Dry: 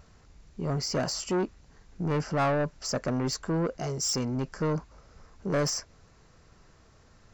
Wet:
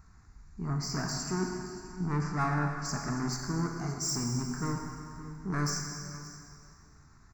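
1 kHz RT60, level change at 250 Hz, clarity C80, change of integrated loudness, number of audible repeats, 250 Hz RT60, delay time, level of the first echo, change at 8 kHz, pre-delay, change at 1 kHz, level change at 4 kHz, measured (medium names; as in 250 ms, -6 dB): 2.3 s, -2.0 dB, 4.0 dB, -3.5 dB, 1, 2.4 s, 574 ms, -16.5 dB, -2.0 dB, 6 ms, -1.5 dB, -4.5 dB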